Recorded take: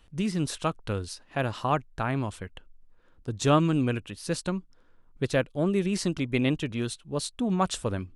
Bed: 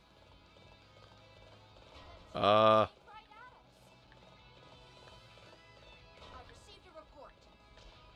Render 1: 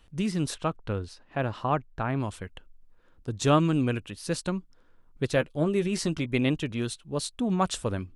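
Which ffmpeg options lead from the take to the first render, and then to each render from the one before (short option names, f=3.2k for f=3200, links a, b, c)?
-filter_complex "[0:a]asettb=1/sr,asplit=3[a][b][c];[a]atrim=end=0.544[d];[b]atrim=start=0.54:end=2.2,asetpts=PTS-STARTPTS,afade=t=in:d=0.004:c=qsin,afade=t=out:st=1.656:d=0.004:c=qsin,aemphasis=mode=reproduction:type=75kf[e];[c]atrim=start=2.196[f];[d][e]acrossfade=d=0.004:c1=hsin:c2=qsin[g];[g][f]acrossfade=d=0.004:c1=qsin:c2=hsin,asettb=1/sr,asplit=3[h][i][j];[h]atrim=end=5.354[k];[i]atrim=start=5.35:end=6.26,asetpts=PTS-STARTPTS,afade=t=in:d=0.004:c=qsin,afade=t=out:st=0.906:d=0.004:c=qsin,asplit=2[l][m];[m]adelay=13,volume=-10dB[n];[l][n]amix=inputs=2:normalize=0,atrim=end_sample=40131[o];[j]atrim=start=6.256[p];[k][o]acrossfade=d=0.004:c1=hsin:c2=qsin[q];[q][p]acrossfade=d=0.004:c1=qsin:c2=hsin"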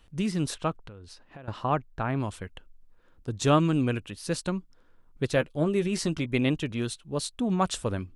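-filter_complex "[0:a]asettb=1/sr,asplit=3[a][b][c];[a]atrim=end=0.844[d];[b]atrim=start=0.84:end=1.48,asetpts=PTS-STARTPTS,afade=t=in:d=0.004:c=qsin,afade=t=out:st=0.636:d=0.004:c=qsin,acompressor=threshold=-41dB:ratio=10:attack=3.2:release=140:knee=1:detection=peak[e];[c]atrim=start=1.476[f];[d][e]acrossfade=d=0.004:c1=hsin:c2=qsin[g];[g][f]acrossfade=d=0.004:c1=qsin:c2=hsin"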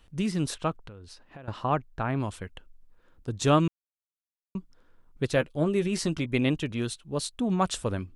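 -filter_complex "[0:a]asplit=3[a][b][c];[a]atrim=end=3.68,asetpts=PTS-STARTPTS,afade=t=out:st=3.676:d=0.004:c=hsin[d];[b]atrim=start=3.68:end=4.55,asetpts=PTS-STARTPTS,volume=0[e];[c]atrim=start=4.55,asetpts=PTS-STARTPTS,afade=t=in:d=0.004:c=hsin[f];[d][e][f]concat=n=3:v=0:a=1"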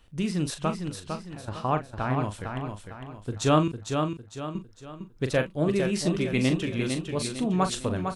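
-filter_complex "[0:a]asplit=2[a][b];[b]adelay=39,volume=-9.5dB[c];[a][c]amix=inputs=2:normalize=0,aecho=1:1:454|908|1362|1816|2270:0.501|0.2|0.0802|0.0321|0.0128"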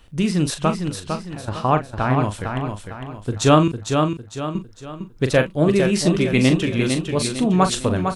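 -af "volume=8dB,alimiter=limit=-2dB:level=0:latency=1"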